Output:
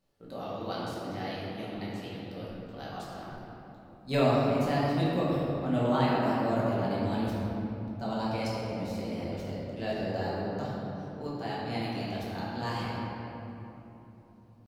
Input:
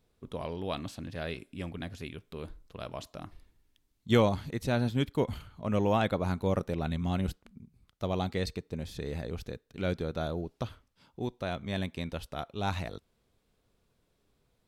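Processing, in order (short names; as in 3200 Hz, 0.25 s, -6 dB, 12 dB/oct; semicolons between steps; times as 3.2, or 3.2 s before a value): low shelf 80 Hz -7 dB; pitch shift +3 st; shoebox room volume 180 m³, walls hard, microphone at 1.1 m; gain -7 dB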